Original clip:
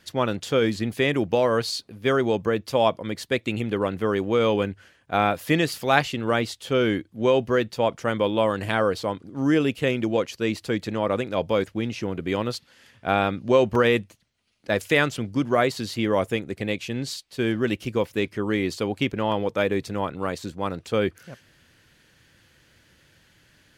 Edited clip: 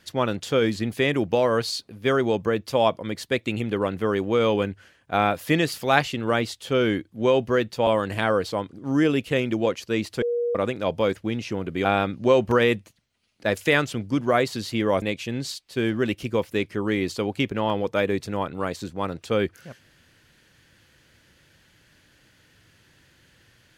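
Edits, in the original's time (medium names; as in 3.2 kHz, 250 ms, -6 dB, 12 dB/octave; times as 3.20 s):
7.87–8.38 s: delete
10.73–11.06 s: bleep 477 Hz -21.5 dBFS
12.36–13.09 s: delete
16.26–16.64 s: delete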